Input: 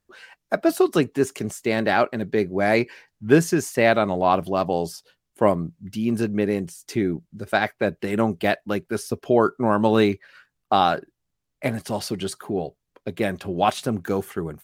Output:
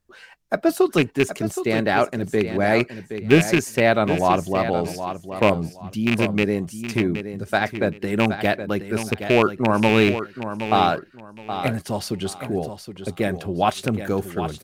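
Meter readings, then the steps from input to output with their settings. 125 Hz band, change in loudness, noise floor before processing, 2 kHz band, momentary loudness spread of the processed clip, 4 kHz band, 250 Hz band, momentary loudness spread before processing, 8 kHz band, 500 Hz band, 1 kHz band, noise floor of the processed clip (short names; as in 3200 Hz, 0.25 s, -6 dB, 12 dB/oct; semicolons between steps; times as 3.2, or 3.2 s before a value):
+3.5 dB, +1.0 dB, -79 dBFS, +3.0 dB, 10 LU, +3.5 dB, +1.5 dB, 11 LU, +0.5 dB, +0.5 dB, +0.5 dB, -47 dBFS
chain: rattling part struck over -20 dBFS, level -10 dBFS; low shelf 93 Hz +8.5 dB; on a send: feedback echo 0.77 s, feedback 22%, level -10 dB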